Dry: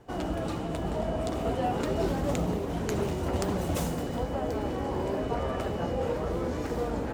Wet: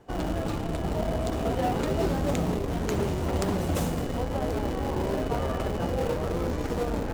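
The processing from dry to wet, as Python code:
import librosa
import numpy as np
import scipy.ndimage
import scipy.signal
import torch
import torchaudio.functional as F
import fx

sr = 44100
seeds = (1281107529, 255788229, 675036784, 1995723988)

p1 = fx.hum_notches(x, sr, base_hz=60, count=2)
p2 = fx.schmitt(p1, sr, flips_db=-27.5)
y = p1 + F.gain(torch.from_numpy(p2), -4.5).numpy()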